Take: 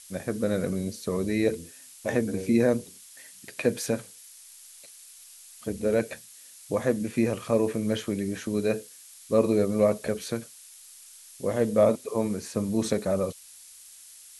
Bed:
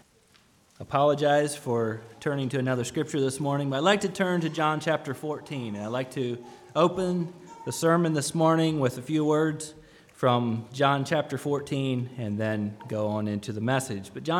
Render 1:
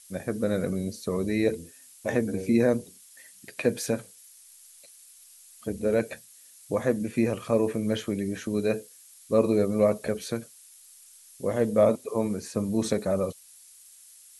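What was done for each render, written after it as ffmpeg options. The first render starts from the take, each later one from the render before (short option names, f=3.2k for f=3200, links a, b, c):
-af "afftdn=nr=6:nf=-50"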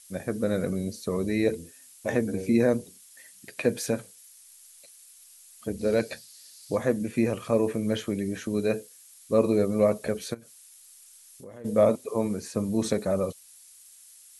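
-filter_complex "[0:a]asettb=1/sr,asplit=3[a][b][c];[a]atrim=end=5.794[d];[b]atrim=start=5.79:end=6.77,asetpts=PTS-STARTPTS,afade=t=in:d=0.004:c=qsin,afade=t=out:st=0.976:d=0.004:c=qsin,equalizer=f=4.6k:t=o:w=0.58:g=12.5[e];[c]atrim=start=6.766[f];[d][e]acrossfade=d=0.004:c1=hsin:c2=qsin[g];[g][f]acrossfade=d=0.004:c1=qsin:c2=hsin,asplit=3[h][i][j];[h]afade=t=out:st=10.33:d=0.02[k];[i]acompressor=threshold=-44dB:ratio=4:attack=3.2:release=140:knee=1:detection=peak,afade=t=in:st=10.33:d=0.02,afade=t=out:st=11.64:d=0.02[l];[j]afade=t=in:st=11.64:d=0.02[m];[k][l][m]amix=inputs=3:normalize=0"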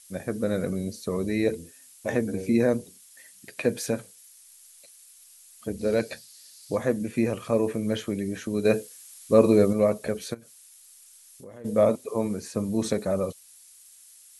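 -filter_complex "[0:a]asettb=1/sr,asplit=3[a][b][c];[a]atrim=end=8.654[d];[b]atrim=start=8.65:end=9.73,asetpts=PTS-STARTPTS,afade=t=in:d=0.004:c=qsin,afade=t=out:st=1.076:d=0.004:c=qsin,acontrast=22[e];[c]atrim=start=9.726[f];[d][e]acrossfade=d=0.004:c1=hsin:c2=qsin[g];[g][f]acrossfade=d=0.004:c1=qsin:c2=hsin"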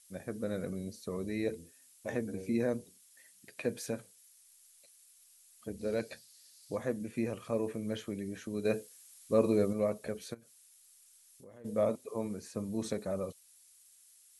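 -af "volume=-9.5dB"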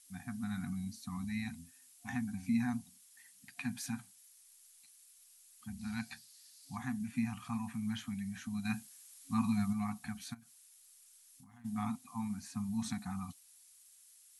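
-af "afftfilt=real='re*(1-between(b*sr/4096,270,700))':imag='im*(1-between(b*sr/4096,270,700))':win_size=4096:overlap=0.75,adynamicequalizer=threshold=0.00316:dfrequency=480:dqfactor=0.74:tfrequency=480:tqfactor=0.74:attack=5:release=100:ratio=0.375:range=2:mode=boostabove:tftype=bell"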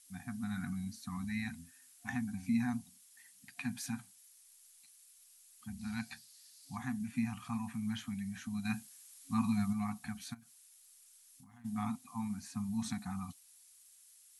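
-filter_complex "[0:a]asettb=1/sr,asplit=3[a][b][c];[a]atrim=end=0.564[d];[b]atrim=start=0.56:end=2.1,asetpts=PTS-STARTPTS,afade=t=in:d=0.004:c=qsin,afade=t=out:st=1.536:d=0.004:c=qsin,equalizer=f=1.6k:t=o:w=0.62:g=6[e];[c]atrim=start=2.096[f];[d][e]acrossfade=d=0.004:c1=hsin:c2=qsin[g];[g][f]acrossfade=d=0.004:c1=qsin:c2=hsin"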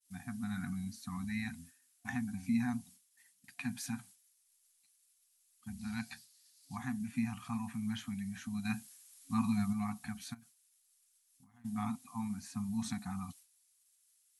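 -af "agate=range=-33dB:threshold=-53dB:ratio=3:detection=peak"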